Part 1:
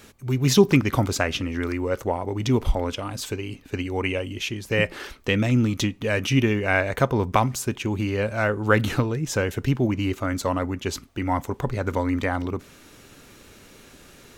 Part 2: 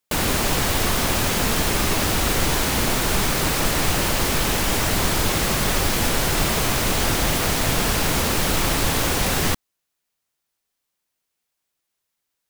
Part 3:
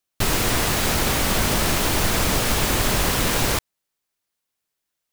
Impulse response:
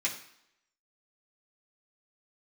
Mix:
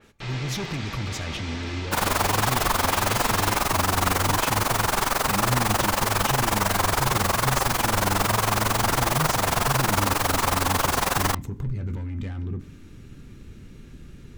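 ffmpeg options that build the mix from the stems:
-filter_complex "[0:a]aemphasis=mode=reproduction:type=cd,asoftclip=type=tanh:threshold=-21.5dB,asubboost=boost=9:cutoff=210,volume=-5.5dB,asplit=2[link_01][link_02];[link_02]volume=-17.5dB[link_03];[1:a]equalizer=frequency=1000:width=0.68:gain=14.5,tremolo=f=22:d=0.889,adelay=1800,volume=-6dB[link_04];[2:a]lowpass=frequency=4700:width=0.5412,lowpass=frequency=4700:width=1.3066,volume=-16.5dB,asplit=2[link_05][link_06];[link_06]volume=-3.5dB[link_07];[link_01][link_05]amix=inputs=2:normalize=0,alimiter=limit=-22dB:level=0:latency=1,volume=0dB[link_08];[3:a]atrim=start_sample=2205[link_09];[link_03][link_07]amix=inputs=2:normalize=0[link_10];[link_10][link_09]afir=irnorm=-1:irlink=0[link_11];[link_04][link_08][link_11]amix=inputs=3:normalize=0,adynamicequalizer=threshold=0.00891:dfrequency=4100:dqfactor=0.7:tfrequency=4100:tqfactor=0.7:attack=5:release=100:ratio=0.375:range=3:mode=boostabove:tftype=highshelf"

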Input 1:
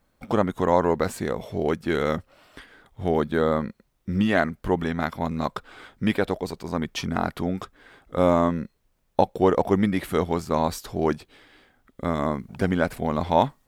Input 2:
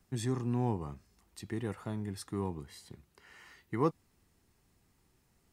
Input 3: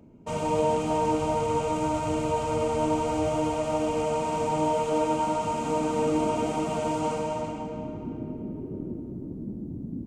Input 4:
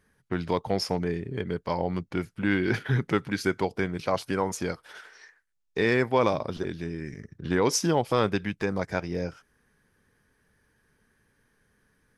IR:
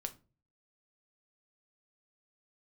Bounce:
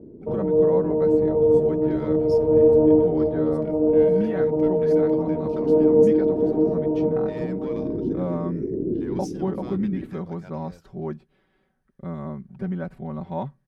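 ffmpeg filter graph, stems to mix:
-filter_complex "[0:a]lowpass=frequency=1200:poles=1,equalizer=frequency=120:width=0.64:gain=9.5,aecho=1:1:5.3:0.96,volume=-14.5dB,asplit=3[link_01][link_02][link_03];[link_02]volume=-20dB[link_04];[1:a]adelay=1350,volume=-18dB[link_05];[2:a]lowpass=frequency=410:width_type=q:width=4,volume=1.5dB,asplit=2[link_06][link_07];[link_07]volume=-4.5dB[link_08];[3:a]asoftclip=type=tanh:threshold=-15.5dB,adelay=1500,volume=-17dB[link_09];[link_03]apad=whole_len=443785[link_10];[link_06][link_10]sidechaincompress=threshold=-35dB:ratio=8:attack=6.1:release=597[link_11];[4:a]atrim=start_sample=2205[link_12];[link_04][link_08]amix=inputs=2:normalize=0[link_13];[link_13][link_12]afir=irnorm=-1:irlink=0[link_14];[link_01][link_05][link_11][link_09][link_14]amix=inputs=5:normalize=0"

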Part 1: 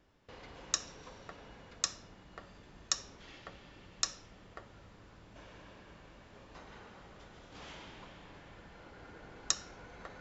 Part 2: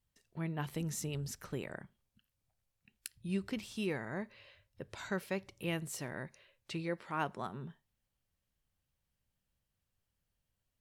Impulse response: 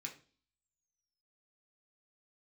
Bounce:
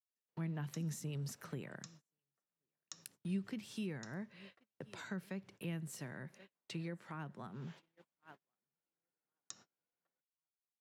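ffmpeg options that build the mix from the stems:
-filter_complex "[0:a]volume=-12.5dB,asplit=2[link_01][link_02];[link_02]volume=-17.5dB[link_03];[1:a]adynamicequalizer=threshold=0.00178:dfrequency=1600:dqfactor=2.6:tfrequency=1600:tqfactor=2.6:attack=5:release=100:ratio=0.375:range=2:mode=boostabove:tftype=bell,volume=1dB,asplit=2[link_04][link_05];[link_05]volume=-23.5dB[link_06];[2:a]atrim=start_sample=2205[link_07];[link_03][link_07]afir=irnorm=-1:irlink=0[link_08];[link_06]aecho=0:1:1078|2156|3234|4312|5390:1|0.36|0.13|0.0467|0.0168[link_09];[link_01][link_04][link_08][link_09]amix=inputs=4:normalize=0,highpass=frequency=130:width=0.5412,highpass=frequency=130:width=1.3066,agate=range=-34dB:threshold=-54dB:ratio=16:detection=peak,acrossover=split=210[link_10][link_11];[link_11]acompressor=threshold=-47dB:ratio=6[link_12];[link_10][link_12]amix=inputs=2:normalize=0"

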